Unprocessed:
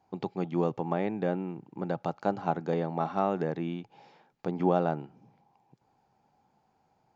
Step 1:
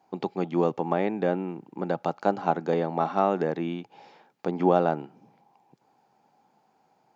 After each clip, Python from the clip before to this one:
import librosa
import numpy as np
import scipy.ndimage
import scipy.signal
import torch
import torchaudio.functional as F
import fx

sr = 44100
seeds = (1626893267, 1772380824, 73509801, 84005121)

y = scipy.signal.sosfilt(scipy.signal.butter(2, 200.0, 'highpass', fs=sr, output='sos'), x)
y = F.gain(torch.from_numpy(y), 5.0).numpy()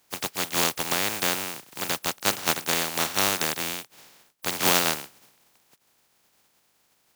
y = fx.spec_flatten(x, sr, power=0.16)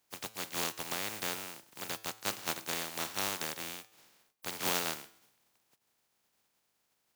y = fx.comb_fb(x, sr, f0_hz=110.0, decay_s=0.64, harmonics='all', damping=0.0, mix_pct=50)
y = F.gain(torch.from_numpy(y), -6.0).numpy()